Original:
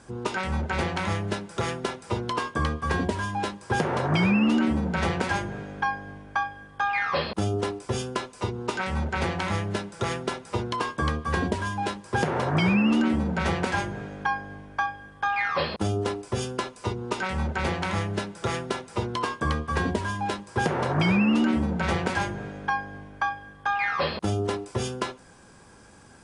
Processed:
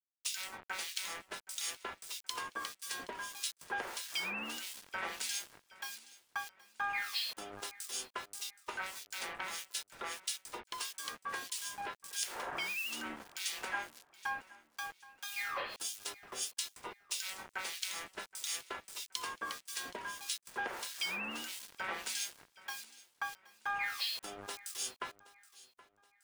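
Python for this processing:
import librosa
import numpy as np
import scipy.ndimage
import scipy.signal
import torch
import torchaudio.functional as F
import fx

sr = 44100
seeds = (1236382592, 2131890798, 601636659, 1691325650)

p1 = scipy.signal.sosfilt(scipy.signal.butter(4, 220.0, 'highpass', fs=sr, output='sos'), x)
p2 = np.diff(p1, prepend=0.0)
p3 = fx.quant_dither(p2, sr, seeds[0], bits=8, dither='none')
p4 = fx.harmonic_tremolo(p3, sr, hz=1.6, depth_pct=100, crossover_hz=2400.0)
p5 = p4 + fx.echo_feedback(p4, sr, ms=773, feedback_pct=38, wet_db=-20.0, dry=0)
y = p5 * librosa.db_to_amplitude(6.5)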